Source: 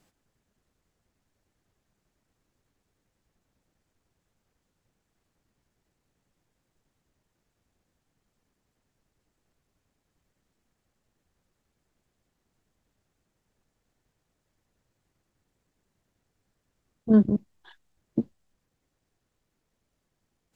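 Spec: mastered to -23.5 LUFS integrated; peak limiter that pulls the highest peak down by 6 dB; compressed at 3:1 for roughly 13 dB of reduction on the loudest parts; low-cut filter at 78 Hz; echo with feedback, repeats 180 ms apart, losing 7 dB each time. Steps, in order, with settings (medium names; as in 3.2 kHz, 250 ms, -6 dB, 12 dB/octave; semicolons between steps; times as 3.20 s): high-pass 78 Hz; compression 3:1, threshold -31 dBFS; peak limiter -25.5 dBFS; feedback delay 180 ms, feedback 45%, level -7 dB; trim +17 dB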